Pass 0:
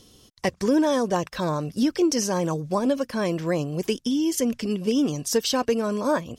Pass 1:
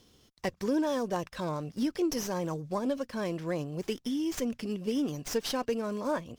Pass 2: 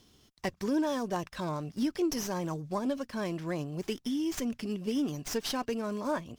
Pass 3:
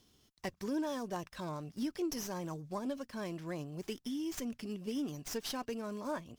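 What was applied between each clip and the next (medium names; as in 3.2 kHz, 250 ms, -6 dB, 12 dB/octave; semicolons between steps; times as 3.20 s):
sliding maximum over 3 samples; trim -8 dB
peaking EQ 500 Hz -8 dB 0.22 oct
treble shelf 7.7 kHz +4 dB; trim -6.5 dB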